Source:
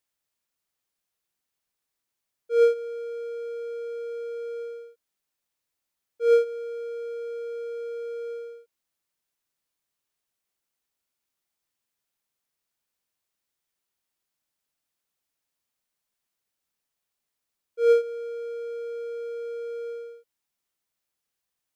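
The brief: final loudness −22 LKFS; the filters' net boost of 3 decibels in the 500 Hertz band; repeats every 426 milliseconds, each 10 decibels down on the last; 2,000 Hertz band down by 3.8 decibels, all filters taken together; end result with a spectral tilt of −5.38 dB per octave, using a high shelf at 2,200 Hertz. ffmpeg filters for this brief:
ffmpeg -i in.wav -af "equalizer=frequency=500:width_type=o:gain=3.5,equalizer=frequency=2000:width_type=o:gain=-3.5,highshelf=frequency=2200:gain=-5.5,aecho=1:1:426|852|1278|1704:0.316|0.101|0.0324|0.0104,volume=3.5dB" out.wav

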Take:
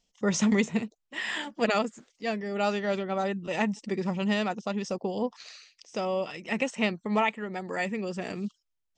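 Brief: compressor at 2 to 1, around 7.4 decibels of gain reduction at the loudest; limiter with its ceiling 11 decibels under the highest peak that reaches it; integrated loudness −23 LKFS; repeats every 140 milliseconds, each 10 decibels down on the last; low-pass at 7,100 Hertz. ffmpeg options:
ffmpeg -i in.wav -af "lowpass=7100,acompressor=threshold=-34dB:ratio=2,alimiter=level_in=5dB:limit=-24dB:level=0:latency=1,volume=-5dB,aecho=1:1:140|280|420|560:0.316|0.101|0.0324|0.0104,volume=15.5dB" out.wav

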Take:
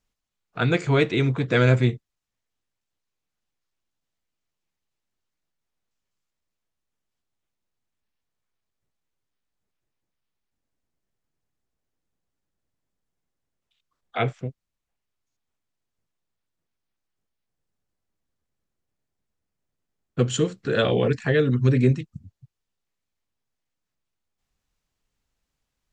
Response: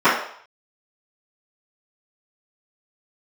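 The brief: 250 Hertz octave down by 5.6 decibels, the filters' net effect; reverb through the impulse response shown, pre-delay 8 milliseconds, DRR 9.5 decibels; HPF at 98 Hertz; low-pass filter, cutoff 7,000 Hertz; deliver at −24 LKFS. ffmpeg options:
-filter_complex "[0:a]highpass=98,lowpass=7000,equalizer=frequency=250:width_type=o:gain=-7.5,asplit=2[link_01][link_02];[1:a]atrim=start_sample=2205,adelay=8[link_03];[link_02][link_03]afir=irnorm=-1:irlink=0,volume=-35dB[link_04];[link_01][link_04]amix=inputs=2:normalize=0,volume=1dB"

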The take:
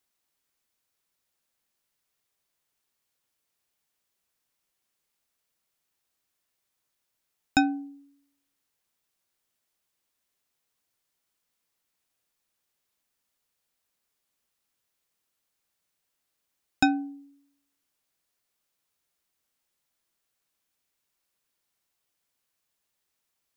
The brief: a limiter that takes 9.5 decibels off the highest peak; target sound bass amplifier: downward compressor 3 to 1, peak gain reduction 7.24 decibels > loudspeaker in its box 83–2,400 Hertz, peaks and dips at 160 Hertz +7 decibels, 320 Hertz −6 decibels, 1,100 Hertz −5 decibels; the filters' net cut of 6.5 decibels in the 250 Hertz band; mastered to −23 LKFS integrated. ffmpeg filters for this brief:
ffmpeg -i in.wav -af "equalizer=frequency=250:width_type=o:gain=-4.5,alimiter=limit=-17dB:level=0:latency=1,acompressor=threshold=-33dB:ratio=3,highpass=frequency=83:width=0.5412,highpass=frequency=83:width=1.3066,equalizer=frequency=160:width_type=q:width=4:gain=7,equalizer=frequency=320:width_type=q:width=4:gain=-6,equalizer=frequency=1100:width_type=q:width=4:gain=-5,lowpass=frequency=2400:width=0.5412,lowpass=frequency=2400:width=1.3066,volume=18.5dB" out.wav

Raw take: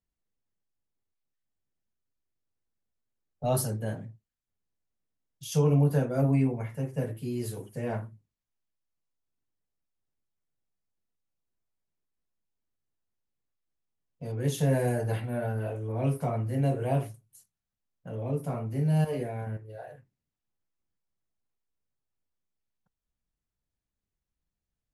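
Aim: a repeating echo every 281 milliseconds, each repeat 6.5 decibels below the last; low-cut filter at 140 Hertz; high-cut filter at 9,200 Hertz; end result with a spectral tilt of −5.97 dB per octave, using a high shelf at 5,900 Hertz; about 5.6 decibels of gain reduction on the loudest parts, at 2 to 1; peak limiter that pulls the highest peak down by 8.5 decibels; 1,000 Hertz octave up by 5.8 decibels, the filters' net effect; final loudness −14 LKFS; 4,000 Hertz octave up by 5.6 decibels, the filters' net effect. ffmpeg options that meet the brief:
ffmpeg -i in.wav -af "highpass=140,lowpass=9200,equalizer=frequency=1000:width_type=o:gain=8.5,equalizer=frequency=4000:width_type=o:gain=8,highshelf=frequency=5900:gain=-3,acompressor=threshold=-30dB:ratio=2,alimiter=level_in=2.5dB:limit=-24dB:level=0:latency=1,volume=-2.5dB,aecho=1:1:281|562|843|1124|1405|1686:0.473|0.222|0.105|0.0491|0.0231|0.0109,volume=22dB" out.wav

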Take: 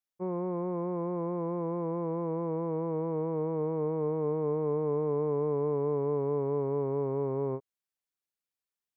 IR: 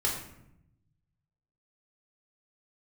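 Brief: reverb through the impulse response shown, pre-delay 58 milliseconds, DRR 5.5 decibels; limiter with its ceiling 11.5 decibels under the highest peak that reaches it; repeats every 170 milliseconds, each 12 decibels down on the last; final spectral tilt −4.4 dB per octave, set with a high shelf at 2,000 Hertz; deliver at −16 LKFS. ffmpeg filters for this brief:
-filter_complex "[0:a]highshelf=frequency=2000:gain=-7.5,alimiter=level_in=8.5dB:limit=-24dB:level=0:latency=1,volume=-8.5dB,aecho=1:1:170|340|510:0.251|0.0628|0.0157,asplit=2[link_01][link_02];[1:a]atrim=start_sample=2205,adelay=58[link_03];[link_02][link_03]afir=irnorm=-1:irlink=0,volume=-13dB[link_04];[link_01][link_04]amix=inputs=2:normalize=0,volume=23dB"

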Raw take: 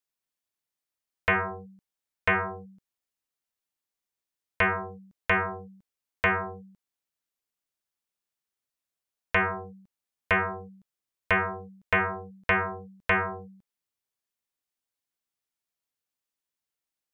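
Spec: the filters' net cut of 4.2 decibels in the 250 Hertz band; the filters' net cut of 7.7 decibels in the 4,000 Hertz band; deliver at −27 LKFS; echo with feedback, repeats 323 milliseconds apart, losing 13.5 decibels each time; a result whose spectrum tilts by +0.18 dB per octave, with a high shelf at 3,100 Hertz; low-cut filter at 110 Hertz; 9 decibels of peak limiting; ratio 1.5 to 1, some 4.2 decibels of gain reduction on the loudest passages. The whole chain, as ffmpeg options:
ffmpeg -i in.wav -af "highpass=110,equalizer=frequency=250:width_type=o:gain=-6.5,highshelf=frequency=3100:gain=-5,equalizer=frequency=4000:width_type=o:gain=-8.5,acompressor=threshold=-33dB:ratio=1.5,alimiter=level_in=3dB:limit=-24dB:level=0:latency=1,volume=-3dB,aecho=1:1:323|646:0.211|0.0444,volume=11dB" out.wav

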